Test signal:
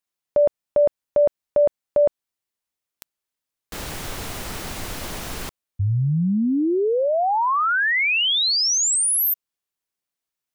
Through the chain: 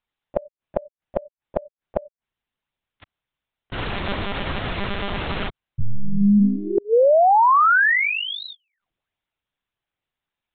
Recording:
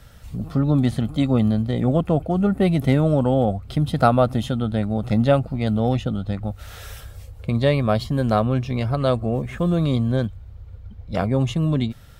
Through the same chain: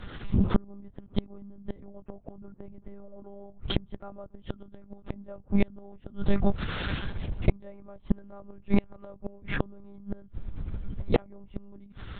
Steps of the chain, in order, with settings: monotone LPC vocoder at 8 kHz 200 Hz; treble ducked by the level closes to 1300 Hz, closed at -16 dBFS; flipped gate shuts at -14 dBFS, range -32 dB; gain +6 dB

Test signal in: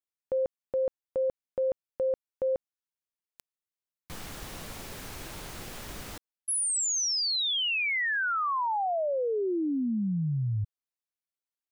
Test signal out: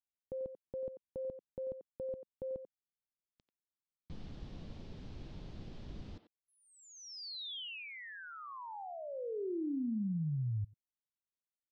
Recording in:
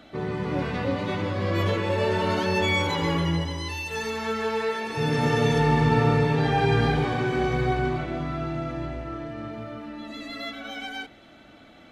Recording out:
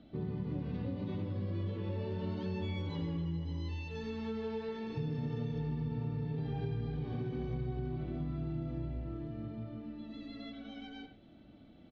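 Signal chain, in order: EQ curve 200 Hz 0 dB, 1400 Hz -19 dB, 2200 Hz -18 dB, 3200 Hz -13 dB; speakerphone echo 90 ms, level -9 dB; compressor 10:1, threshold -31 dBFS; LPF 4800 Hz 24 dB/oct; dynamic EQ 640 Hz, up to -3 dB, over -54 dBFS, Q 2.4; gain -2 dB

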